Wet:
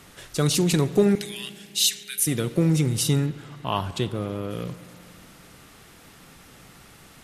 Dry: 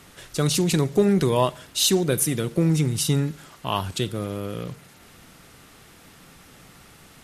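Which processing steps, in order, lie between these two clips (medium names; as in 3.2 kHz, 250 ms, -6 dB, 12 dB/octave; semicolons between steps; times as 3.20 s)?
1.15–2.27 s: steep high-pass 1.8 kHz 36 dB/octave; 3.26–4.51 s: treble shelf 5 kHz -9.5 dB; spring tank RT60 2.8 s, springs 34/56 ms, chirp 60 ms, DRR 15 dB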